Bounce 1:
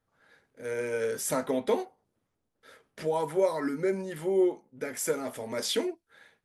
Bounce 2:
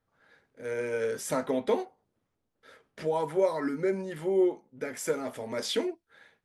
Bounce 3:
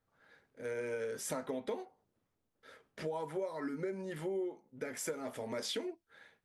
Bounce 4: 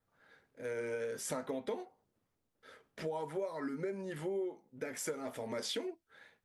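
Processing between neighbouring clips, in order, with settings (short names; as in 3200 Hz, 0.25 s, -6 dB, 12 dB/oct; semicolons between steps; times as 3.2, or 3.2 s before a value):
high shelf 9000 Hz -11 dB
compressor 5:1, threshold -33 dBFS, peak gain reduction 12 dB; gain -2.5 dB
vibrato 2.1 Hz 38 cents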